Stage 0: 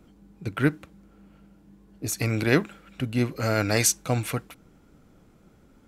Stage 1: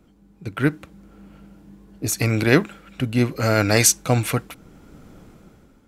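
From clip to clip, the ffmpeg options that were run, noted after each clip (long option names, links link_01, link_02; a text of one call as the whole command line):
ffmpeg -i in.wav -af "dynaudnorm=framelen=230:gausssize=7:maxgain=16dB,volume=-1dB" out.wav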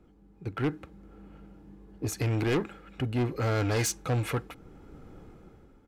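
ffmpeg -i in.wav -af "highshelf=frequency=3100:gain=-12,aecho=1:1:2.4:0.33,asoftclip=type=tanh:threshold=-20dB,volume=-3dB" out.wav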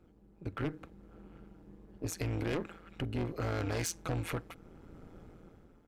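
ffmpeg -i in.wav -af "acompressor=threshold=-29dB:ratio=4,tremolo=f=170:d=0.824" out.wav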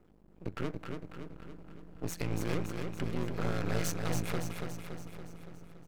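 ffmpeg -i in.wav -af "aeval=exprs='max(val(0),0)':channel_layout=same,aecho=1:1:283|566|849|1132|1415|1698|1981:0.562|0.315|0.176|0.0988|0.0553|0.031|0.0173,volume=3.5dB" out.wav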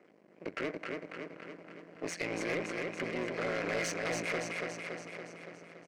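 ffmpeg -i in.wav -filter_complex "[0:a]highpass=200,equalizer=frequency=590:width_type=q:width=4:gain=4,equalizer=frequency=870:width_type=q:width=4:gain=-7,equalizer=frequency=1300:width_type=q:width=4:gain=-5,equalizer=frequency=2100:width_type=q:width=4:gain=7,equalizer=frequency=3600:width_type=q:width=4:gain=-8,equalizer=frequency=7200:width_type=q:width=4:gain=-4,lowpass=frequency=8500:width=0.5412,lowpass=frequency=8500:width=1.3066,asplit=2[link_01][link_02];[link_02]adelay=437.3,volume=-28dB,highshelf=frequency=4000:gain=-9.84[link_03];[link_01][link_03]amix=inputs=2:normalize=0,asplit=2[link_04][link_05];[link_05]highpass=frequency=720:poles=1,volume=18dB,asoftclip=type=tanh:threshold=-21dB[link_06];[link_04][link_06]amix=inputs=2:normalize=0,lowpass=frequency=4300:poles=1,volume=-6dB,volume=-2.5dB" out.wav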